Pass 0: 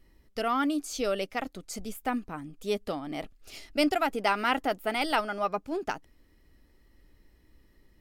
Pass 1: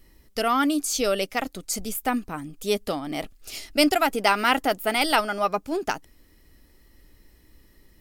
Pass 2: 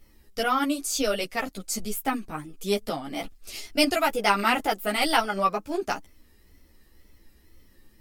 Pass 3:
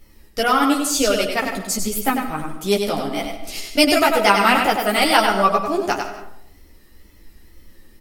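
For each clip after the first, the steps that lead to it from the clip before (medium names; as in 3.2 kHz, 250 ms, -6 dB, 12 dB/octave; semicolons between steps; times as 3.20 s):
treble shelf 5 kHz +10 dB; trim +5 dB
wow and flutter 86 cents; three-phase chorus; trim +1.5 dB
delay 97 ms -5.5 dB; reverberation RT60 0.75 s, pre-delay 110 ms, DRR 11 dB; trim +6.5 dB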